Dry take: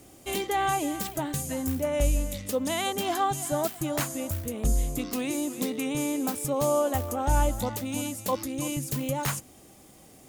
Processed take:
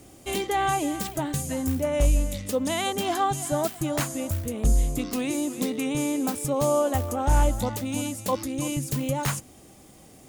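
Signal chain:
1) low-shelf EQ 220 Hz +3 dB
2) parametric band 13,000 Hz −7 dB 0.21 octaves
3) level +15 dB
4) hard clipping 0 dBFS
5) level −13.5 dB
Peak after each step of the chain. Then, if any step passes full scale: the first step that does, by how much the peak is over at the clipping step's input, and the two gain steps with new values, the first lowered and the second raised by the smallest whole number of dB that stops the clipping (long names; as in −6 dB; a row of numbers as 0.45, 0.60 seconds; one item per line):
−11.0, −11.0, +4.0, 0.0, −13.5 dBFS
step 3, 4.0 dB
step 3 +11 dB, step 5 −9.5 dB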